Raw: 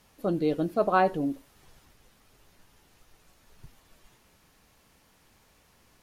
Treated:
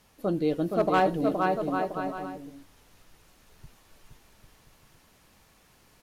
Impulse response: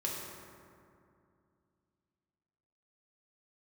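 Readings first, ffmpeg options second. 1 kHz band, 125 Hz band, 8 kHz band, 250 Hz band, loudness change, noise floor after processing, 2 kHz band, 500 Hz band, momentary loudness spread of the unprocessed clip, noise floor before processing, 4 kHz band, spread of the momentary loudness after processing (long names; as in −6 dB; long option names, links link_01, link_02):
+1.5 dB, +2.0 dB, +3.0 dB, +2.0 dB, −0.5 dB, −61 dBFS, +2.0 dB, +2.0 dB, 9 LU, −63 dBFS, +4.0 dB, 13 LU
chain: -af "aecho=1:1:470|799|1029|1191|1303:0.631|0.398|0.251|0.158|0.1,asoftclip=type=hard:threshold=-15.5dB"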